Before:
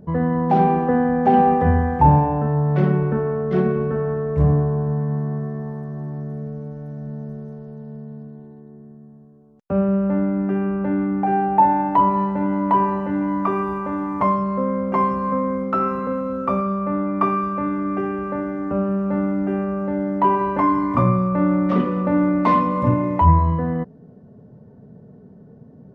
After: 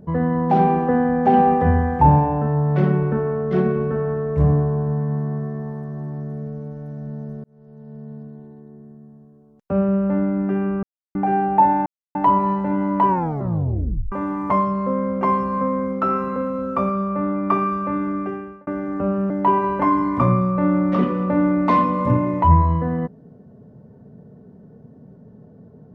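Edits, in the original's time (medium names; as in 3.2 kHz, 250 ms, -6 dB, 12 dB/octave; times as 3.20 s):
7.44–8.11 s: fade in
10.83–11.15 s: mute
11.86 s: insert silence 0.29 s
12.79 s: tape stop 1.04 s
17.81–18.38 s: fade out linear
19.01–20.07 s: delete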